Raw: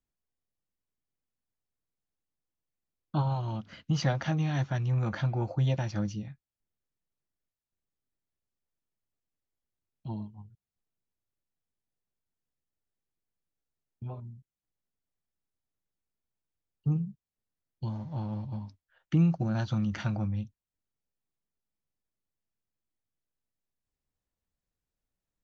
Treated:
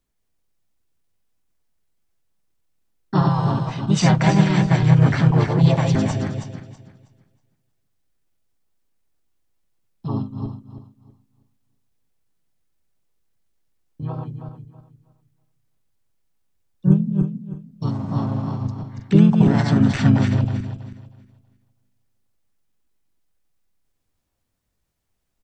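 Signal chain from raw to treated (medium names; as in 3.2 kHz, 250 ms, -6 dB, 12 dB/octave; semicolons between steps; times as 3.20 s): backward echo that repeats 161 ms, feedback 50%, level -3.5 dB; harmony voices -4 st -16 dB, +4 st 0 dB; trim +7.5 dB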